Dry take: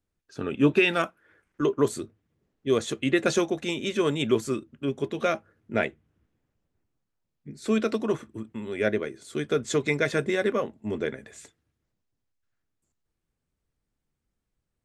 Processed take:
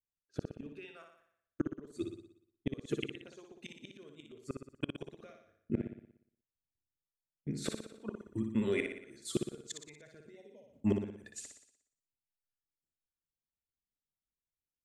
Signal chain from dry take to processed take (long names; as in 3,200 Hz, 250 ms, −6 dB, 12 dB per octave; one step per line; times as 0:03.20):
0:10.37–0:10.65: healed spectral selection 1,000–2,300 Hz both
reverb reduction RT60 0.97 s
noise gate −49 dBFS, range −24 dB
rotating-speaker cabinet horn 0.75 Hz, later 6.3 Hz, at 0:06.67
gate with flip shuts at −24 dBFS, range −34 dB
flutter between parallel walls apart 10.2 metres, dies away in 0.66 s
0:10.25–0:10.81: multiband upward and downward compressor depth 40%
level +5 dB